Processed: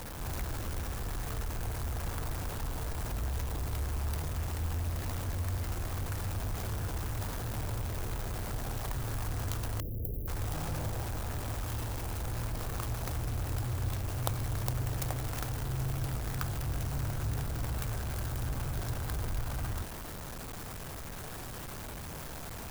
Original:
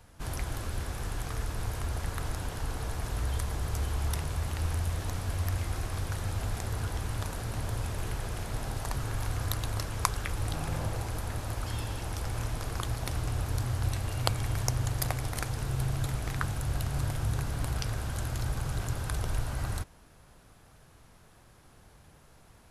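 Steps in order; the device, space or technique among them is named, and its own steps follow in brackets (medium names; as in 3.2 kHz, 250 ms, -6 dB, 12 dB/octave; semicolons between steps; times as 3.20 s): early CD player with a faulty converter (jump at every zero crossing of -30 dBFS; sampling jitter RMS 0.074 ms); 9.80–10.28 s: inverse Chebyshev band-stop 940–7900 Hz, stop band 40 dB; trim -6 dB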